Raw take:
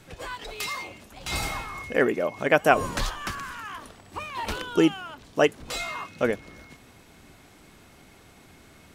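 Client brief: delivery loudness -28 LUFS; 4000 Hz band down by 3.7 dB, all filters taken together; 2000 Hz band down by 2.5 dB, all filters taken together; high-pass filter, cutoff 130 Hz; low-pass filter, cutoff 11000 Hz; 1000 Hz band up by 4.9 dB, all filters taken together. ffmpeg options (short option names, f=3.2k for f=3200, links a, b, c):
-af "highpass=130,lowpass=11k,equalizer=f=1k:t=o:g=8.5,equalizer=f=2k:t=o:g=-6.5,equalizer=f=4k:t=o:g=-3,volume=-2dB"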